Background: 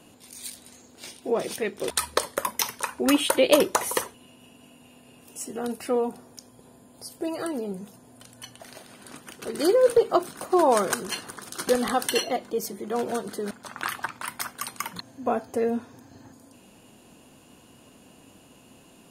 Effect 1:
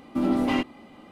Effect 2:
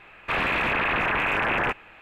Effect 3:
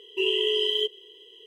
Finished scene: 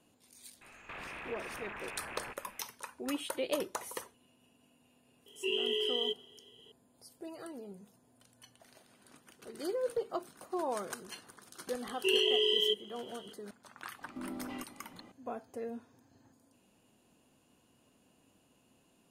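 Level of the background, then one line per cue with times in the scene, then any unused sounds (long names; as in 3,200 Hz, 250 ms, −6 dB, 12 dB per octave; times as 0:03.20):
background −15.5 dB
0:00.61: mix in 2 −7.5 dB + downward compressor 12 to 1, threshold −36 dBFS
0:05.26: mix in 3 −8.5 dB
0:11.87: mix in 3 −4 dB
0:14.01: mix in 1 −7.5 dB + downward compressor 3 to 1, threshold −35 dBFS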